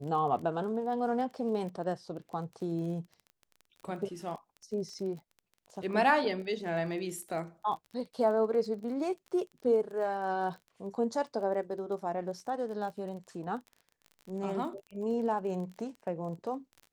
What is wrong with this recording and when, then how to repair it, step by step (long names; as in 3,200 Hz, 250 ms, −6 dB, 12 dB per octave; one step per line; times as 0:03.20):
surface crackle 26 per second −41 dBFS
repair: click removal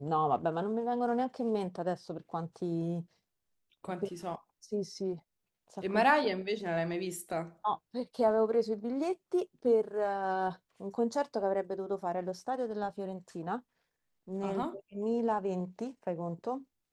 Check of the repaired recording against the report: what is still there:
none of them is left